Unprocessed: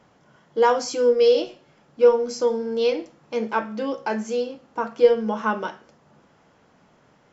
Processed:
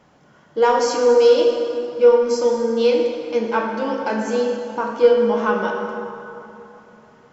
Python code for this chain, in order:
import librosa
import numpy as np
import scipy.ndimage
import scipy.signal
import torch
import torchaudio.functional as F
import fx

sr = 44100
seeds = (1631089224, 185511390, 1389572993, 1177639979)

p1 = 10.0 ** (-14.0 / 20.0) * np.tanh(x / 10.0 ** (-14.0 / 20.0))
p2 = x + F.gain(torch.from_numpy(p1), -4.5).numpy()
p3 = fx.rev_plate(p2, sr, seeds[0], rt60_s=3.1, hf_ratio=0.6, predelay_ms=0, drr_db=1.0)
y = F.gain(torch.from_numpy(p3), -2.0).numpy()